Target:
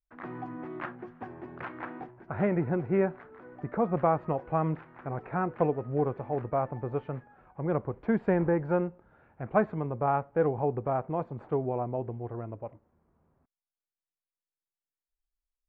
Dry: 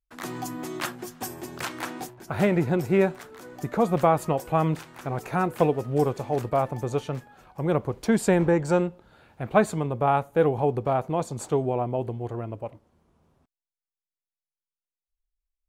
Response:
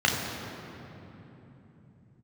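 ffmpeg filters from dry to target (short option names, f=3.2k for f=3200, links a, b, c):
-af "lowpass=f=2k:w=0.5412,lowpass=f=2k:w=1.3066,volume=-5dB"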